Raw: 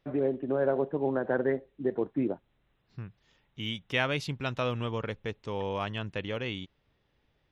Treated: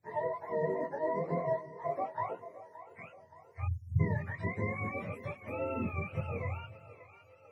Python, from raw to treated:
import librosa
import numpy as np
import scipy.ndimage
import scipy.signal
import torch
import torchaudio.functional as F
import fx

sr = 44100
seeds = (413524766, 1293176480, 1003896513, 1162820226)

y = fx.octave_mirror(x, sr, pivot_hz=510.0)
y = fx.echo_split(y, sr, split_hz=370.0, low_ms=190, high_ms=573, feedback_pct=52, wet_db=-15)
y = fx.spec_erase(y, sr, start_s=3.65, length_s=0.35, low_hz=220.0, high_hz=5300.0)
y = fx.chorus_voices(y, sr, voices=6, hz=0.38, base_ms=22, depth_ms=4.1, mix_pct=45)